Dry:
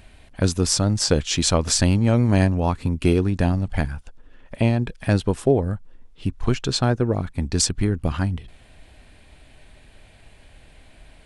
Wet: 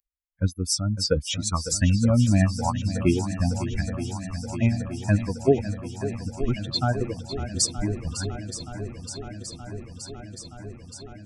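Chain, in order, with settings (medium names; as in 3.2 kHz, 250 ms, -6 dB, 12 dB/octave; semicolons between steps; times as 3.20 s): expander on every frequency bin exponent 3; 1.34–1.81 s: static phaser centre 1.3 kHz, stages 4; shuffle delay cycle 923 ms, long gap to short 1.5:1, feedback 73%, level -12 dB; trim +2.5 dB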